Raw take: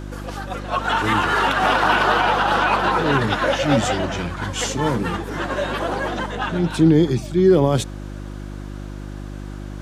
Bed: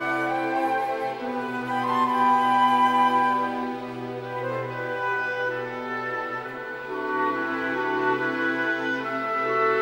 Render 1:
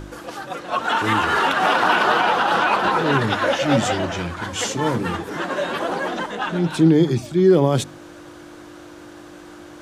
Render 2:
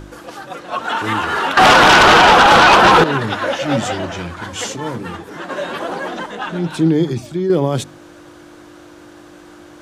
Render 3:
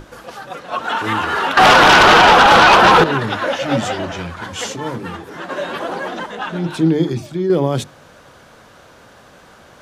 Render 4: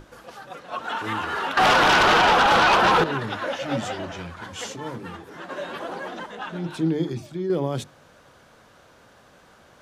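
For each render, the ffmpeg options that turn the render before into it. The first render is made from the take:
-af "bandreject=f=50:t=h:w=4,bandreject=f=100:t=h:w=4,bandreject=f=150:t=h:w=4,bandreject=f=200:t=h:w=4,bandreject=f=250:t=h:w=4"
-filter_complex "[0:a]asettb=1/sr,asplit=3[a][b][c];[a]atrim=end=1.574[d];[b]atrim=start=1.57:end=3.04,asetpts=PTS-STARTPTS,afade=t=in:d=0.004:c=qsin,afade=t=out:st=1.466:d=0.004:c=qsin,aeval=exprs='0.596*sin(PI/2*3.16*val(0)/0.596)':c=same[e];[c]atrim=start=3.036[f];[d][e]acrossfade=d=0.004:c1=hsin:c2=qsin[g];[g][f]acrossfade=d=0.004:c1=qsin:c2=hsin,asettb=1/sr,asplit=3[h][i][j];[h]atrim=end=7.104[k];[i]atrim=start=7.1:end=7.5,asetpts=PTS-STARTPTS,afade=t=in:d=0.004:c=qsin,afade=t=out:st=0.396:d=0.004:c=qsin,acompressor=threshold=-15dB:ratio=6:attack=3.2:release=140:knee=1:detection=peak[l];[j]atrim=start=7.496[m];[k][l]acrossfade=d=0.004:c1=hsin:c2=qsin[n];[n][m]acrossfade=d=0.004:c1=qsin:c2=hsin,asplit=3[o][p][q];[o]atrim=end=4.762[r];[p]atrim=start=4.758:end=5.492,asetpts=PTS-STARTPTS,volume=-3.5dB[s];[q]atrim=start=5.488[t];[r][s]acrossfade=d=0.004:c1=hsin:c2=hsin[u];[u][t]acrossfade=d=0.004:c1=hsin:c2=hsin"
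-af "equalizer=f=8k:w=1.7:g=-3,bandreject=f=50:t=h:w=6,bandreject=f=100:t=h:w=6,bandreject=f=150:t=h:w=6,bandreject=f=200:t=h:w=6,bandreject=f=250:t=h:w=6,bandreject=f=300:t=h:w=6,bandreject=f=350:t=h:w=6"
-af "volume=-8.5dB"

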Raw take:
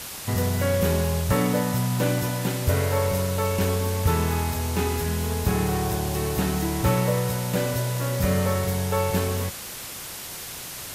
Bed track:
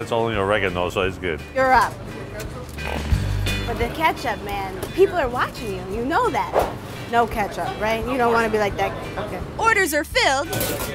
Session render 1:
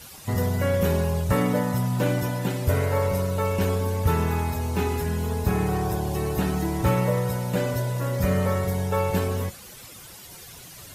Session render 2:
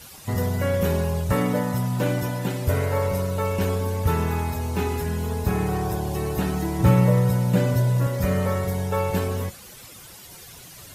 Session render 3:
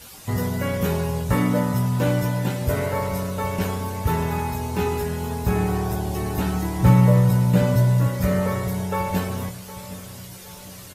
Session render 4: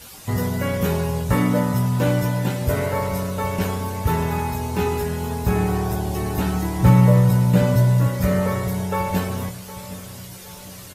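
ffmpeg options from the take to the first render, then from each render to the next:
-af "afftdn=nr=12:nf=-37"
-filter_complex "[0:a]asettb=1/sr,asplit=3[a][b][c];[a]atrim=end=6.794[d];[b]atrim=start=6.79:end=8.07,asetpts=PTS-STARTPTS,afade=t=in:d=0.004:c=qsin,afade=t=out:st=1.276:d=0.004:c=qsin,equalizer=f=150:w=0.85:g=8[e];[c]atrim=start=8.066[f];[d][e]acrossfade=d=0.004:c1=hsin:c2=qsin[g];[g][f]acrossfade=d=0.004:c1=qsin:c2=hsin"
-filter_complex "[0:a]asplit=2[a][b];[b]adelay=17,volume=-5.5dB[c];[a][c]amix=inputs=2:normalize=0,asplit=2[d][e];[e]adelay=764,lowpass=f=2k:p=1,volume=-15dB,asplit=2[f][g];[g]adelay=764,lowpass=f=2k:p=1,volume=0.5,asplit=2[h][i];[i]adelay=764,lowpass=f=2k:p=1,volume=0.5,asplit=2[j][k];[k]adelay=764,lowpass=f=2k:p=1,volume=0.5,asplit=2[l][m];[m]adelay=764,lowpass=f=2k:p=1,volume=0.5[n];[d][f][h][j][l][n]amix=inputs=6:normalize=0"
-af "volume=1.5dB,alimiter=limit=-3dB:level=0:latency=1"

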